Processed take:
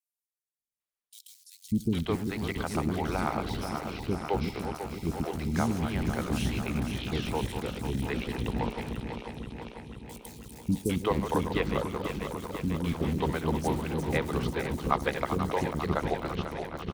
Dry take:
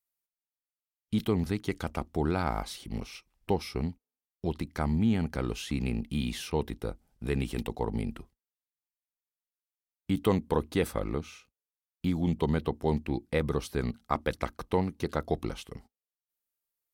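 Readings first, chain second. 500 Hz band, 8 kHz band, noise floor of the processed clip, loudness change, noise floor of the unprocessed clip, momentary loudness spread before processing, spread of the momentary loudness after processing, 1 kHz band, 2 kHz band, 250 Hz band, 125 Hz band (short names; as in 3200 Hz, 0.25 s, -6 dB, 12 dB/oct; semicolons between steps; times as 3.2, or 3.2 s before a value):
+0.5 dB, +3.5 dB, under -85 dBFS, +0.5 dB, under -85 dBFS, 11 LU, 11 LU, +3.5 dB, +4.0 dB, +0.5 dB, +1.0 dB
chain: regenerating reverse delay 0.247 s, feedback 84%, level -7 dB; LPF 12000 Hz; in parallel at -11.5 dB: bit-crush 5-bit; on the sum: three bands offset in time highs, lows, mids 0.59/0.8 s, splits 370/4900 Hz; harmonic-percussive split harmonic -8 dB; on a send: feedback echo 71 ms, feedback 45%, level -22.5 dB; on the sum: gain +1.5 dB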